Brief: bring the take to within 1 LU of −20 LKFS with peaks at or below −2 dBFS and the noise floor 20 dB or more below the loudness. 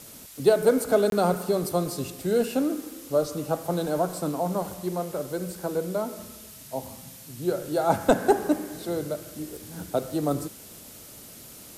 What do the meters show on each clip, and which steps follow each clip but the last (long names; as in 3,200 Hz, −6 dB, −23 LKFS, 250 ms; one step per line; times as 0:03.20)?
number of dropouts 1; longest dropout 22 ms; background noise floor −46 dBFS; target noise floor −47 dBFS; integrated loudness −26.5 LKFS; sample peak −7.0 dBFS; target loudness −20.0 LKFS
→ repair the gap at 0:01.10, 22 ms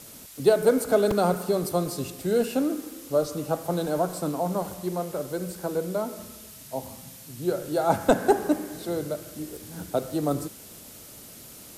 number of dropouts 0; background noise floor −46 dBFS; target noise floor −47 dBFS
→ broadband denoise 6 dB, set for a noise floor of −46 dBFS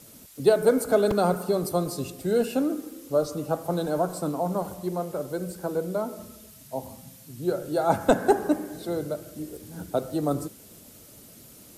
background noise floor −50 dBFS; integrated loudness −26.5 LKFS; sample peak −7.0 dBFS; target loudness −20.0 LKFS
→ level +6.5 dB
brickwall limiter −2 dBFS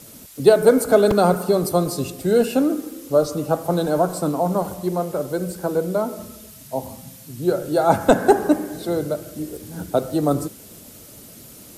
integrated loudness −20.5 LKFS; sample peak −2.0 dBFS; background noise floor −43 dBFS